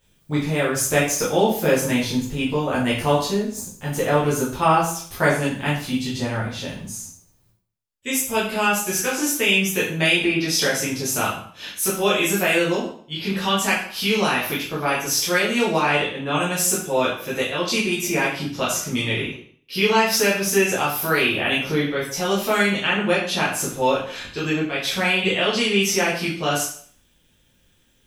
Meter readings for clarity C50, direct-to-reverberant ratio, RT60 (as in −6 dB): 4.5 dB, −7.5 dB, 0.55 s